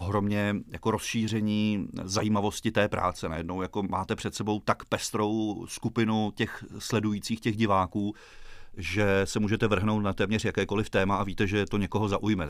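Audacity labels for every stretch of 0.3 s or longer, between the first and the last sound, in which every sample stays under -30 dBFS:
8.110000	8.790000	silence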